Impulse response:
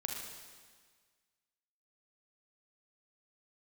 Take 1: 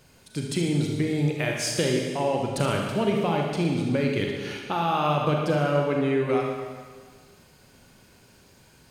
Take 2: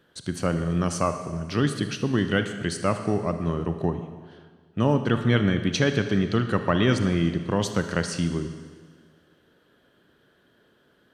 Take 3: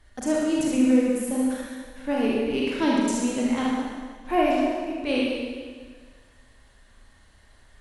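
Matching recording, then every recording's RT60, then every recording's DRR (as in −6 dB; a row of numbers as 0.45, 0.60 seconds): 1; 1.6, 1.6, 1.6 seconds; 0.0, 7.5, −5.0 decibels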